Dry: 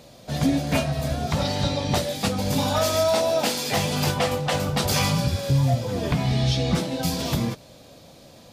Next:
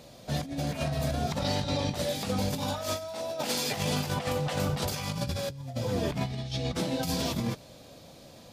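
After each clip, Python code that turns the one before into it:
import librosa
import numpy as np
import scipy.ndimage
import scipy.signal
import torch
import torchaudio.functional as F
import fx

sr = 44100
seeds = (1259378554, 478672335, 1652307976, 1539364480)

y = fx.over_compress(x, sr, threshold_db=-25.0, ratio=-0.5)
y = y * 10.0 ** (-5.0 / 20.0)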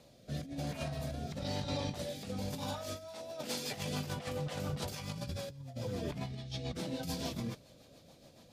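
y = fx.rotary_switch(x, sr, hz=1.0, then_hz=7.0, switch_at_s=2.68)
y = y * 10.0 ** (-6.5 / 20.0)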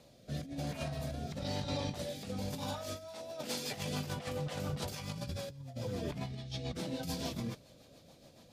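y = x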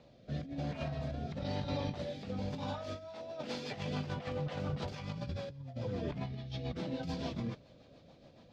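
y = fx.air_absorb(x, sr, metres=190.0)
y = y * 10.0 ** (1.0 / 20.0)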